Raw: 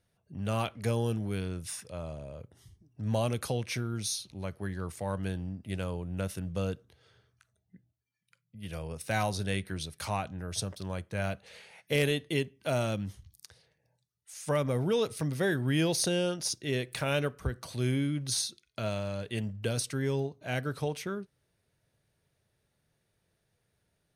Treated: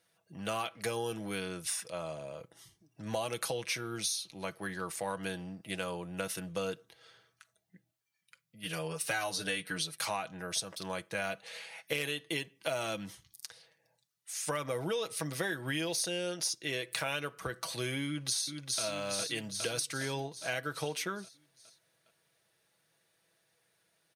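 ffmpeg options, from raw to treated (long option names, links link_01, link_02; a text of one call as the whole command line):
ffmpeg -i in.wav -filter_complex "[0:a]asettb=1/sr,asplit=3[link_01][link_02][link_03];[link_01]atrim=end=8.634[link_04];[link_02]atrim=start=8.63:end=9.96,asetpts=PTS-STARTPTS,afade=type=in:duration=0.004:curve=qsin,afade=type=out:start_time=1.326:duration=0.004:curve=qsin,aecho=1:1:6.8:0.89,atrim=end_sample=58653[link_05];[link_03]atrim=start=9.956[link_06];[link_04][link_05]acrossfade=duration=0.004:curve1=hsin:curve2=qsin[link_07];[link_07][link_06]acrossfade=duration=0.004:curve1=qsin:curve2=hsin,asplit=2[link_08][link_09];[link_09]afade=type=in:start_time=18.06:duration=0.01,afade=type=out:start_time=18.82:duration=0.01,aecho=0:1:410|820|1230|1640|2050|2460|2870|3280:0.562341|0.337405|0.202443|0.121466|0.0728794|0.0437277|0.0262366|0.015742[link_10];[link_08][link_10]amix=inputs=2:normalize=0,highpass=frequency=750:poles=1,aecho=1:1:6.1:0.48,acompressor=threshold=-37dB:ratio=6,volume=6dB" out.wav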